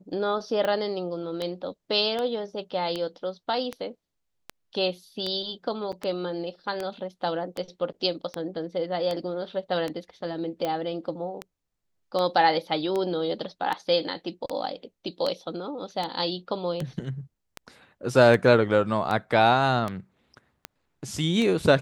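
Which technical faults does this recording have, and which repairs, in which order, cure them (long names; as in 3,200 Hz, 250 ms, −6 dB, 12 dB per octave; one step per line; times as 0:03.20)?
scratch tick 78 rpm −16 dBFS
0:05.92–0:05.93: drop-out 7.1 ms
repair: click removal
repair the gap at 0:05.92, 7.1 ms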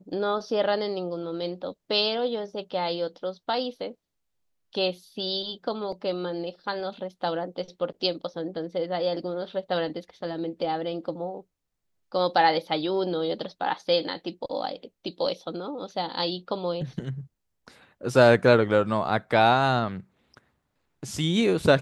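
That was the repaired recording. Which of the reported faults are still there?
none of them is left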